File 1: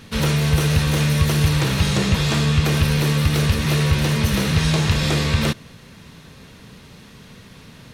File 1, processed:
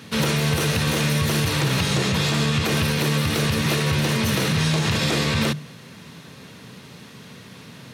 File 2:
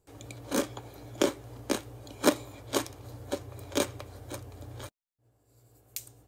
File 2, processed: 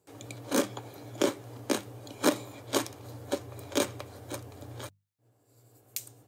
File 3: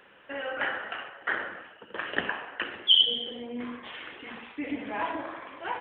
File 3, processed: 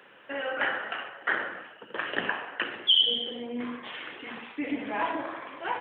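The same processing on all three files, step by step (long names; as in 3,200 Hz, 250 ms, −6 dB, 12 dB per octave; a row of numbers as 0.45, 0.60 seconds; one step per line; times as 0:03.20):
high-pass filter 100 Hz 24 dB per octave
mains-hum notches 50/100/150/200 Hz
brickwall limiter −14 dBFS
normalise the peak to −12 dBFS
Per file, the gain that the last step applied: +2.0, +2.0, +2.0 decibels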